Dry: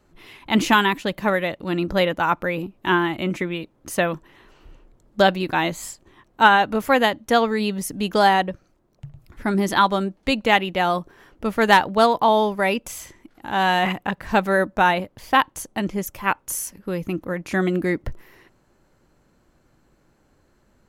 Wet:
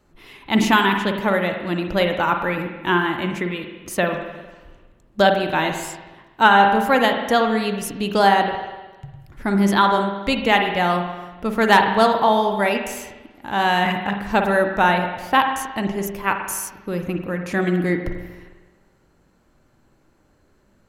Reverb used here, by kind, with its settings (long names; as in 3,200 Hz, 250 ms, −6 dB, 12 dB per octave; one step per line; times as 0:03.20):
spring reverb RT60 1.2 s, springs 45/50 ms, chirp 30 ms, DRR 4.5 dB